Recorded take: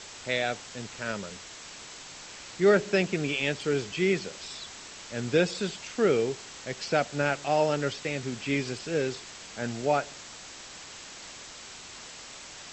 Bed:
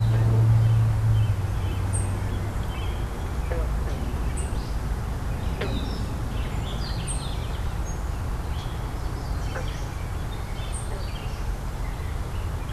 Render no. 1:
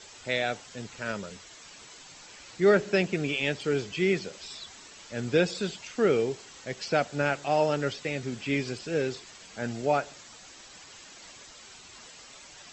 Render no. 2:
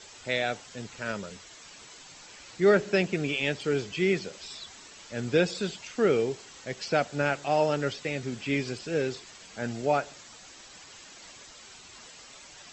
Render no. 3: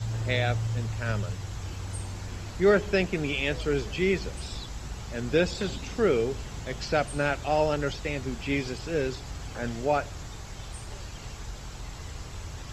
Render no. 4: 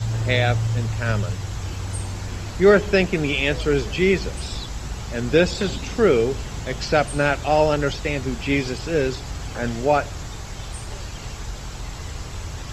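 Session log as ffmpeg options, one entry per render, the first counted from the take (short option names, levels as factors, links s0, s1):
-af "afftdn=nr=8:nf=-45"
-af anull
-filter_complex "[1:a]volume=0.316[s0];[0:a][s0]amix=inputs=2:normalize=0"
-af "volume=2.24"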